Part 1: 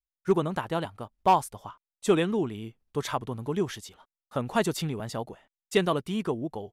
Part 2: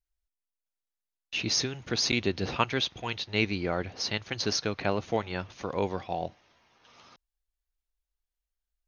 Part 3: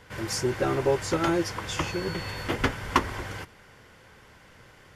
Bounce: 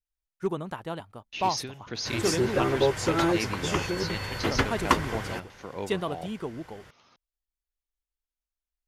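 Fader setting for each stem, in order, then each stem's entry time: -5.5 dB, -6.0 dB, +0.5 dB; 0.15 s, 0.00 s, 1.95 s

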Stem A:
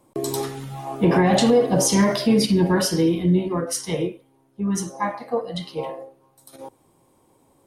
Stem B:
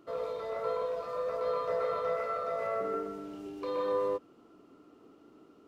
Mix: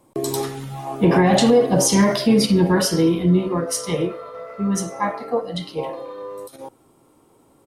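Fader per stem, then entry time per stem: +2.0 dB, -3.0 dB; 0.00 s, 2.30 s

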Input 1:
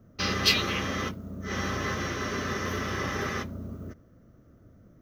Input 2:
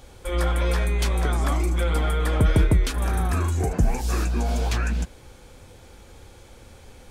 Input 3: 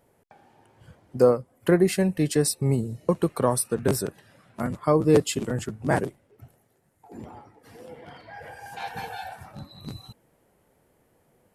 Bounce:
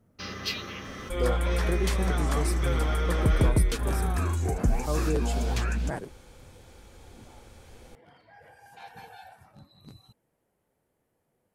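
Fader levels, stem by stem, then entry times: -9.5 dB, -4.0 dB, -11.5 dB; 0.00 s, 0.85 s, 0.00 s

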